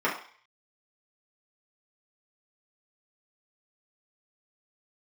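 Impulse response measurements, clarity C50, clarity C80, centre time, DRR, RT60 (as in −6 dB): 7.0 dB, 11.5 dB, 28 ms, −6.0 dB, 0.45 s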